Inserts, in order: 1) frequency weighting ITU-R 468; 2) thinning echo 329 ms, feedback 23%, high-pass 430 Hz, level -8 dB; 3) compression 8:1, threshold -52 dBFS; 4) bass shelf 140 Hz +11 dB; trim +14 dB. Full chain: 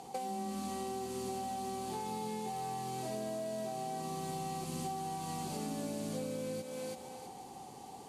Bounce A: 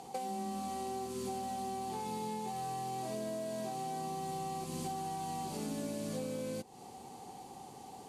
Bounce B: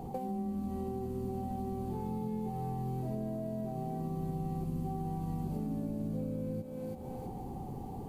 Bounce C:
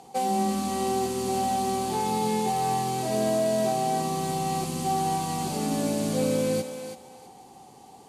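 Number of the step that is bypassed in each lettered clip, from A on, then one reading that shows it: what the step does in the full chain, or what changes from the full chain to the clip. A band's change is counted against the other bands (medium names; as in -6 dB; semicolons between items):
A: 2, momentary loudness spread change +5 LU; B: 1, 125 Hz band +9.5 dB; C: 3, mean gain reduction 10.0 dB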